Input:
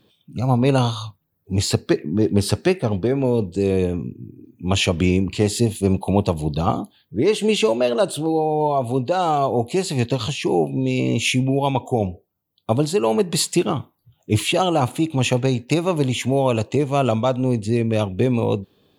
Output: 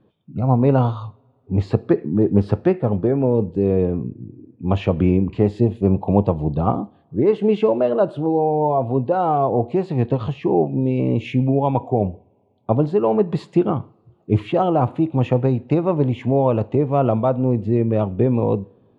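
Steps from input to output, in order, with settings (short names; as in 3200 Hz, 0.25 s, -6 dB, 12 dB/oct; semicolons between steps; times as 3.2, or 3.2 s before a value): LPF 1200 Hz 12 dB/oct; two-slope reverb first 0.47 s, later 3.3 s, from -27 dB, DRR 17.5 dB; gain +1.5 dB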